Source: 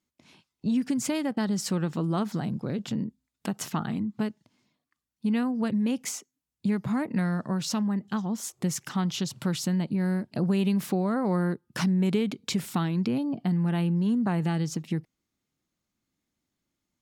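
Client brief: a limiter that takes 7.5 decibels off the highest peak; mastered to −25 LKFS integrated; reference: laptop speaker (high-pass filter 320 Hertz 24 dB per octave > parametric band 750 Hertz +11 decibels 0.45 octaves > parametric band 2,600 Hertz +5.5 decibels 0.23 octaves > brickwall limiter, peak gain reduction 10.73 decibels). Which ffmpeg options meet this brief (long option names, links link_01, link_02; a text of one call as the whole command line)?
ffmpeg -i in.wav -af "alimiter=limit=-23dB:level=0:latency=1,highpass=frequency=320:width=0.5412,highpass=frequency=320:width=1.3066,equalizer=frequency=750:width_type=o:width=0.45:gain=11,equalizer=frequency=2600:width_type=o:width=0.23:gain=5.5,volume=15dB,alimiter=limit=-14.5dB:level=0:latency=1" out.wav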